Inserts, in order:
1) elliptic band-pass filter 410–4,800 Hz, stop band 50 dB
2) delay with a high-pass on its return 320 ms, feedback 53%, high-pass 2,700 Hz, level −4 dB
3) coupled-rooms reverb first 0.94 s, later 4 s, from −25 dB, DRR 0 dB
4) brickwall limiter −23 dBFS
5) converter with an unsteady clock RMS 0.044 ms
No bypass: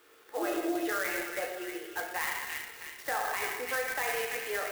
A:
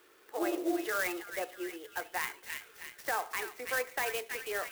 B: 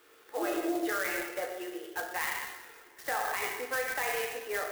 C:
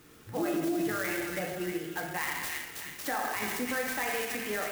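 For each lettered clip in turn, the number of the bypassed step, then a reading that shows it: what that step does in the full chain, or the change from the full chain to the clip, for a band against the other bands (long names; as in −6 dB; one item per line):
3, change in momentary loudness spread +2 LU
2, change in momentary loudness spread +3 LU
1, 125 Hz band +14.5 dB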